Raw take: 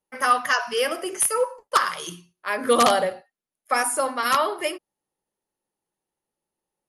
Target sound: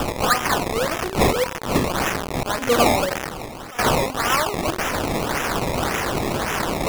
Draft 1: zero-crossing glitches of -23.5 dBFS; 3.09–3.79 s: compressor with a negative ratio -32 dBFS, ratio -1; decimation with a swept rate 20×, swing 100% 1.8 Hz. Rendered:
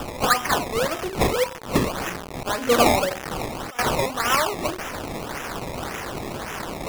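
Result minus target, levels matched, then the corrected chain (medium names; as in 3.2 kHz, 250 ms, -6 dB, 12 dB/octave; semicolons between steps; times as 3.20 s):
zero-crossing glitches: distortion -8 dB
zero-crossing glitches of -15.5 dBFS; 3.09–3.79 s: compressor with a negative ratio -32 dBFS, ratio -1; decimation with a swept rate 20×, swing 100% 1.8 Hz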